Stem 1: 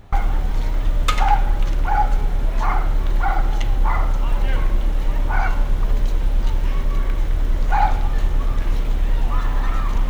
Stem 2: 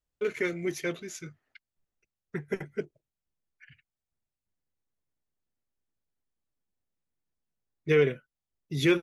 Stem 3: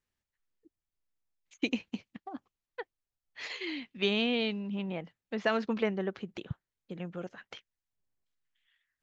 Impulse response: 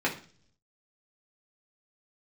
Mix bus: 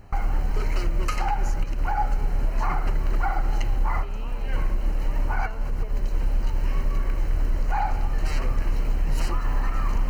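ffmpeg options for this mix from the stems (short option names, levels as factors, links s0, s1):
-filter_complex "[0:a]volume=0.708[s0];[1:a]aeval=exprs='0.0376*(abs(mod(val(0)/0.0376+3,4)-2)-1)':c=same,adelay=350,volume=0.944[s1];[2:a]equalizer=f=530:t=o:w=2.1:g=5,volume=0.112,asplit=2[s2][s3];[s3]apad=whole_len=445265[s4];[s0][s4]sidechaincompress=threshold=0.00355:ratio=8:attack=24:release=162[s5];[s5][s1][s2]amix=inputs=3:normalize=0,asuperstop=centerf=3500:order=8:qfactor=4.2,alimiter=limit=0.188:level=0:latency=1:release=134"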